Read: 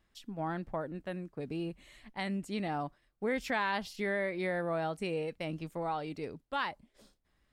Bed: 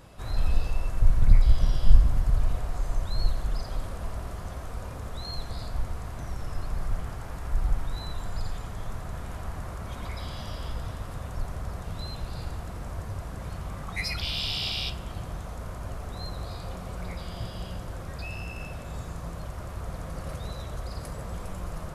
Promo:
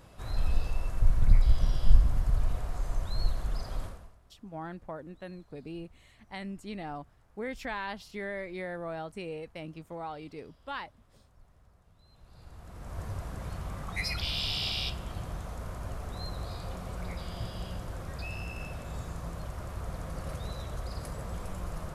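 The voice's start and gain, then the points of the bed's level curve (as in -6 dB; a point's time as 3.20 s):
4.15 s, -4.0 dB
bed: 3.85 s -3.5 dB
4.19 s -27 dB
12.02 s -27 dB
13.03 s -2 dB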